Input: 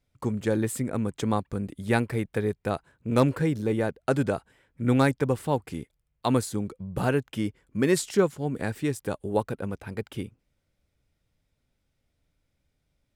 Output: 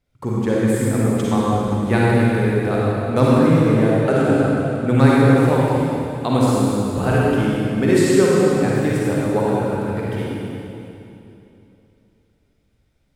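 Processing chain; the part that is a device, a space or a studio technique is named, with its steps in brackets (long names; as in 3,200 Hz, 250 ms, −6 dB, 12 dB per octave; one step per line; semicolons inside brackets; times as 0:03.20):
swimming-pool hall (convolution reverb RT60 2.9 s, pre-delay 39 ms, DRR −6.5 dB; high-shelf EQ 4,200 Hz −5 dB)
level +2.5 dB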